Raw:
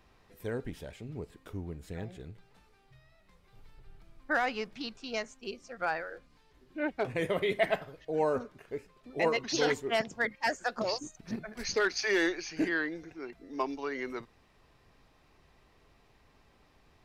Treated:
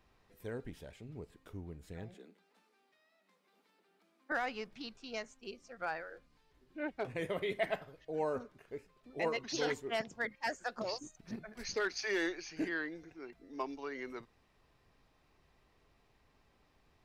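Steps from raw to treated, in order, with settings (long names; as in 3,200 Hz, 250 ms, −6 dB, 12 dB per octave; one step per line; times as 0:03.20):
0:02.14–0:04.32: Butterworth high-pass 190 Hz 72 dB per octave
level −6.5 dB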